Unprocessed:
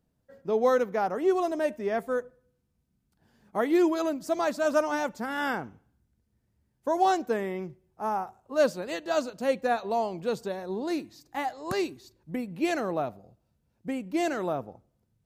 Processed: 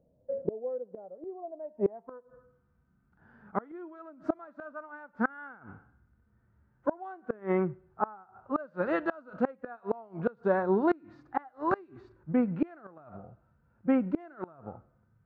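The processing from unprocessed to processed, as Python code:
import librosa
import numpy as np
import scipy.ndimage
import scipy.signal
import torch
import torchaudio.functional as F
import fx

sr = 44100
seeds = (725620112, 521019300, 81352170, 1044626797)

y = fx.filter_sweep_lowpass(x, sr, from_hz=570.0, to_hz=1400.0, start_s=1.26, end_s=2.7, q=4.5)
y = fx.hpss(y, sr, part='percussive', gain_db=-12)
y = fx.gate_flip(y, sr, shuts_db=-22.0, range_db=-29)
y = F.gain(torch.from_numpy(y), 7.0).numpy()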